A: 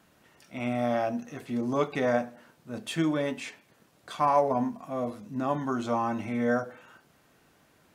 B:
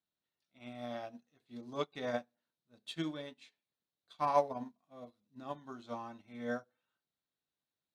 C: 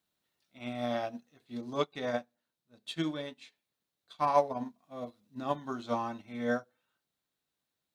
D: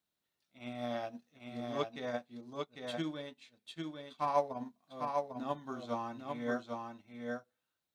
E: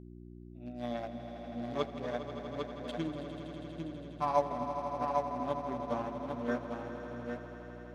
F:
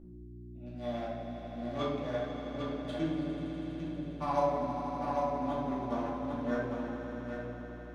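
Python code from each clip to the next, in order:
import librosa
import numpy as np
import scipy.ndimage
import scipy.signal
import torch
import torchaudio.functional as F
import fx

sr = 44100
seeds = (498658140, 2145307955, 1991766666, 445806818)

y1 = fx.peak_eq(x, sr, hz=3900.0, db=14.5, octaves=0.58)
y1 = fx.upward_expand(y1, sr, threshold_db=-40.0, expansion=2.5)
y1 = F.gain(torch.from_numpy(y1), -4.0).numpy()
y2 = fx.rider(y1, sr, range_db=5, speed_s=0.5)
y2 = F.gain(torch.from_numpy(y2), 5.0).numpy()
y3 = y2 + 10.0 ** (-4.0 / 20.0) * np.pad(y2, (int(799 * sr / 1000.0), 0))[:len(y2)]
y3 = F.gain(torch.from_numpy(y3), -5.0).numpy()
y4 = fx.wiener(y3, sr, points=41)
y4 = fx.echo_swell(y4, sr, ms=81, loudest=5, wet_db=-13)
y4 = fx.dmg_buzz(y4, sr, base_hz=60.0, harmonics=6, level_db=-52.0, tilt_db=-2, odd_only=False)
y4 = F.gain(torch.from_numpy(y4), 2.0).numpy()
y5 = fx.room_shoebox(y4, sr, seeds[0], volume_m3=470.0, walls='mixed', distance_m=2.4)
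y5 = F.gain(torch.from_numpy(y5), -5.0).numpy()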